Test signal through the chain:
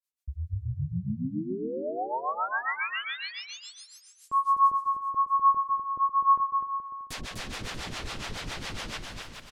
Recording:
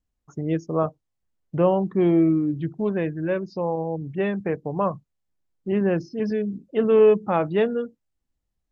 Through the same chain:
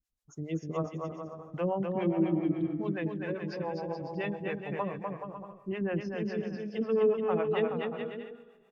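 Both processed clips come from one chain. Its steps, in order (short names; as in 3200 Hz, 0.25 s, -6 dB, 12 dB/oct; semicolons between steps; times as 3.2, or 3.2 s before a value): high shelf 2500 Hz +10.5 dB; Schroeder reverb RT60 2.2 s, combs from 30 ms, DRR 17.5 dB; harmonic tremolo 7.2 Hz, depth 100%, crossover 460 Hz; treble ducked by the level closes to 1500 Hz, closed at -19.5 dBFS; bouncing-ball echo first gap 0.25 s, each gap 0.7×, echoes 5; gain -6 dB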